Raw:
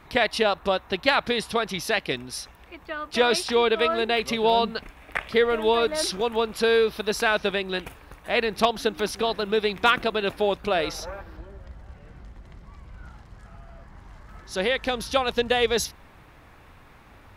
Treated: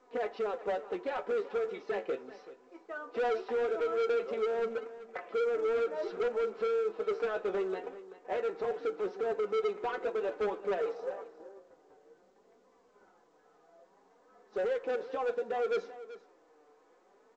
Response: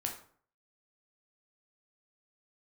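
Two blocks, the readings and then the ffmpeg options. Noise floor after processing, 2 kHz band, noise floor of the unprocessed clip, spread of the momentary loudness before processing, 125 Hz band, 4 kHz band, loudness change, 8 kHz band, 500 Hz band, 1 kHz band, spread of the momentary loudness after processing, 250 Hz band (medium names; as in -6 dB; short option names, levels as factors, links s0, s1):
-66 dBFS, -16.5 dB, -51 dBFS, 12 LU, under -20 dB, -25.0 dB, -10.0 dB, under -25 dB, -7.0 dB, -12.5 dB, 14 LU, -14.0 dB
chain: -filter_complex "[0:a]agate=range=0.447:threshold=0.01:ratio=16:detection=peak,lowpass=1600,equalizer=f=620:t=o:w=2.1:g=4,aecho=1:1:4:0.48,alimiter=limit=0.2:level=0:latency=1:release=118,flanger=delay=7.8:depth=8.5:regen=40:speed=0.2:shape=triangular,highpass=f=400:t=q:w=4.9,flanger=delay=3.8:depth=3.1:regen=23:speed=0.63:shape=triangular,asoftclip=type=tanh:threshold=0.0668,aecho=1:1:383:0.158,asplit=2[s0][s1];[1:a]atrim=start_sample=2205[s2];[s1][s2]afir=irnorm=-1:irlink=0,volume=0.355[s3];[s0][s3]amix=inputs=2:normalize=0,volume=0.473" -ar 16000 -c:a pcm_mulaw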